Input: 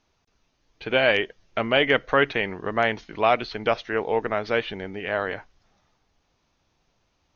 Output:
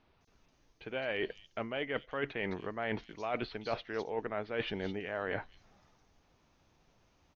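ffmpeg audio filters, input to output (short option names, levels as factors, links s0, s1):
-filter_complex "[0:a]equalizer=f=200:w=0.35:g=2.5,areverse,acompressor=threshold=0.0251:ratio=16,areverse,acrossover=split=4300[s0][s1];[s1]adelay=210[s2];[s0][s2]amix=inputs=2:normalize=0"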